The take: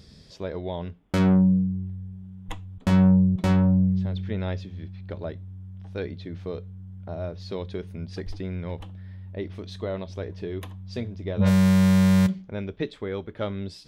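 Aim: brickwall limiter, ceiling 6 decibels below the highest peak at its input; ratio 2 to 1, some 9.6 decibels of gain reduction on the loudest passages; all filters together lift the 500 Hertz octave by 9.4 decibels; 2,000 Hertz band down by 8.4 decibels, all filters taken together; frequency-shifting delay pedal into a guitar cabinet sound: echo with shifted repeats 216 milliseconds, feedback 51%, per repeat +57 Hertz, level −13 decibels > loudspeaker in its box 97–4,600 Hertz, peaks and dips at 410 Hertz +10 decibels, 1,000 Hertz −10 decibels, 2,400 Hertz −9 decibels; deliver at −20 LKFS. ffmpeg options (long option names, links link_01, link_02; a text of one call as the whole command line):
ffmpeg -i in.wav -filter_complex "[0:a]equalizer=frequency=500:width_type=o:gain=6,equalizer=frequency=2000:width_type=o:gain=-8,acompressor=threshold=-33dB:ratio=2,alimiter=level_in=0.5dB:limit=-24dB:level=0:latency=1,volume=-0.5dB,asplit=6[link_01][link_02][link_03][link_04][link_05][link_06];[link_02]adelay=216,afreqshift=57,volume=-13dB[link_07];[link_03]adelay=432,afreqshift=114,volume=-18.8dB[link_08];[link_04]adelay=648,afreqshift=171,volume=-24.7dB[link_09];[link_05]adelay=864,afreqshift=228,volume=-30.5dB[link_10];[link_06]adelay=1080,afreqshift=285,volume=-36.4dB[link_11];[link_01][link_07][link_08][link_09][link_10][link_11]amix=inputs=6:normalize=0,highpass=97,equalizer=frequency=410:width_type=q:width=4:gain=10,equalizer=frequency=1000:width_type=q:width=4:gain=-10,equalizer=frequency=2400:width_type=q:width=4:gain=-9,lowpass=frequency=4600:width=0.5412,lowpass=frequency=4600:width=1.3066,volume=12.5dB" out.wav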